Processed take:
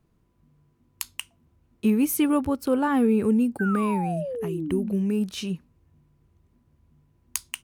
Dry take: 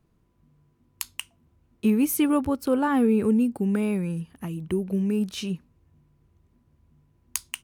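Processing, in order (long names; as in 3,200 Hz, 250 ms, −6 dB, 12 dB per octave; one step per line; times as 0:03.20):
sound drawn into the spectrogram fall, 0:03.59–0:04.93, 200–1,600 Hz −31 dBFS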